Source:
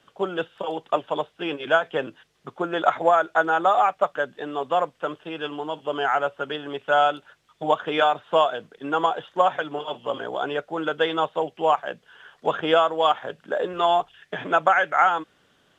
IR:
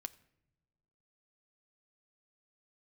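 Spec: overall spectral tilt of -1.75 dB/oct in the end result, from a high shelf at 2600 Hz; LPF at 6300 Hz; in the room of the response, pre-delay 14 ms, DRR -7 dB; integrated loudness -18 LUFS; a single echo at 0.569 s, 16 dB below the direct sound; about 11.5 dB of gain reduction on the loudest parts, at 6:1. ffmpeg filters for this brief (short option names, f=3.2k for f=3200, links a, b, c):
-filter_complex "[0:a]lowpass=6.3k,highshelf=f=2.6k:g=5.5,acompressor=threshold=-26dB:ratio=6,aecho=1:1:569:0.158,asplit=2[a][b];[1:a]atrim=start_sample=2205,adelay=14[c];[b][c]afir=irnorm=-1:irlink=0,volume=10.5dB[d];[a][d]amix=inputs=2:normalize=0,volume=5.5dB"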